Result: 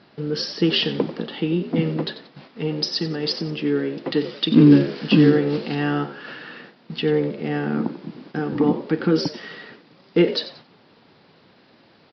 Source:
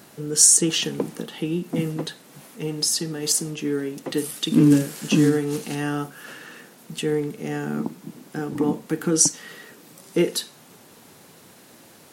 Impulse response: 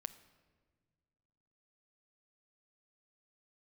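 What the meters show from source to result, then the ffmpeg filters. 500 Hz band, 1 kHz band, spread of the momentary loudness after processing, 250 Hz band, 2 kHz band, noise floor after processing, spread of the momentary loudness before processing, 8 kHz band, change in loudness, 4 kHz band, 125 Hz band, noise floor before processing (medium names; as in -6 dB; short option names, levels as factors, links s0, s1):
+4.0 dB, +3.5 dB, 19 LU, +3.5 dB, +3.5 dB, -55 dBFS, 18 LU, under -25 dB, +0.5 dB, +2.0 dB, +3.5 dB, -50 dBFS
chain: -filter_complex "[0:a]aresample=11025,aresample=44100,asplit=4[s0][s1][s2][s3];[s1]adelay=91,afreqshift=64,volume=0.2[s4];[s2]adelay=182,afreqshift=128,volume=0.0638[s5];[s3]adelay=273,afreqshift=192,volume=0.0204[s6];[s0][s4][s5][s6]amix=inputs=4:normalize=0,agate=range=0.447:threshold=0.00447:ratio=16:detection=peak,volume=1.5"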